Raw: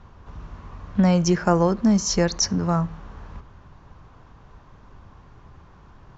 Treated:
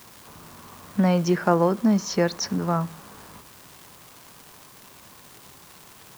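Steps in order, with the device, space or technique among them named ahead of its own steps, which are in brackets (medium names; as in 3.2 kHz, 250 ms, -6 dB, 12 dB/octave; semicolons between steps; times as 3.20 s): 78 rpm shellac record (band-pass 180–4100 Hz; crackle 280 per s -35 dBFS; white noise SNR 25 dB)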